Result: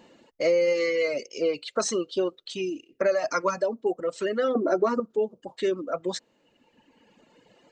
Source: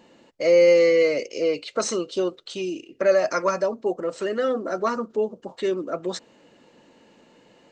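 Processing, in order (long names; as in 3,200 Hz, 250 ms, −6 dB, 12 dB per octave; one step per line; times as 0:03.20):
reverb reduction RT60 1.8 s
0:04.55–0:05.00: parametric band 360 Hz +11.5 dB 2.2 octaves
downward compressor, threshold −19 dBFS, peak gain reduction 8 dB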